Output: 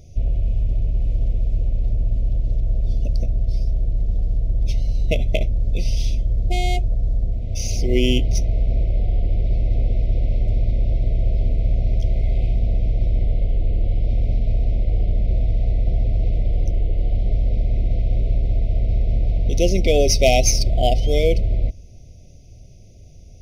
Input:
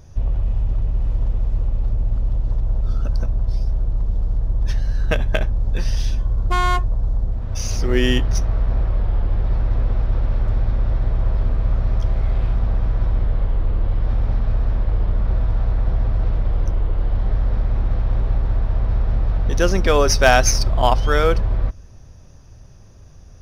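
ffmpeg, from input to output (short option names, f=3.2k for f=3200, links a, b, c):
-af "afftfilt=real='re*(1-between(b*sr/4096,750,2000))':imag='im*(1-between(b*sr/4096,750,2000))':win_size=4096:overlap=0.75"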